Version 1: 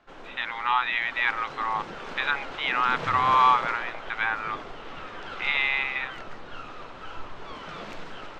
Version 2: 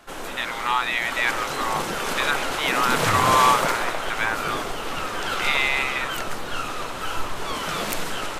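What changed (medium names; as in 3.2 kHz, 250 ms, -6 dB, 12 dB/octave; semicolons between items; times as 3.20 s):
background +10.0 dB; master: remove distance through air 180 m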